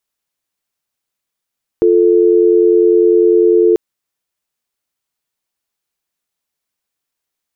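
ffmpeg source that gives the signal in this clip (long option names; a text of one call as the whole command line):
ffmpeg -f lavfi -i "aevalsrc='0.335*(sin(2*PI*350*t)+sin(2*PI*440*t))':duration=1.94:sample_rate=44100" out.wav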